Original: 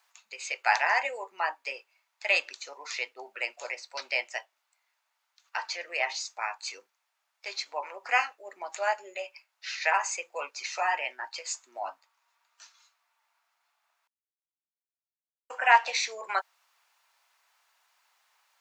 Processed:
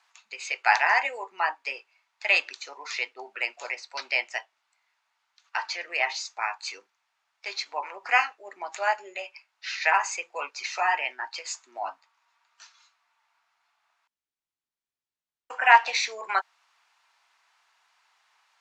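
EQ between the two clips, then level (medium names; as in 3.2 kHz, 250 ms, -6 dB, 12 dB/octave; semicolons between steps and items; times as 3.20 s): distance through air 66 m; peaking EQ 550 Hz -7 dB 0.44 oct; +4.5 dB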